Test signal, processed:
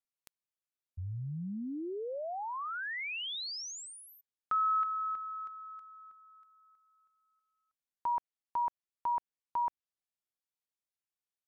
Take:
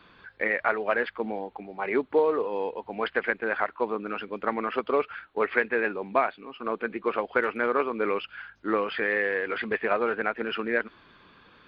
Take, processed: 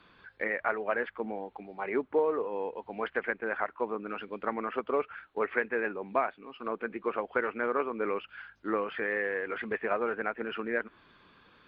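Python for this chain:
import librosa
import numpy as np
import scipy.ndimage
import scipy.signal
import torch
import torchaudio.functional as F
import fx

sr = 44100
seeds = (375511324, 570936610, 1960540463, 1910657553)

y = fx.env_lowpass_down(x, sr, base_hz=2400.0, full_db=-26.5)
y = F.gain(torch.from_numpy(y), -4.5).numpy()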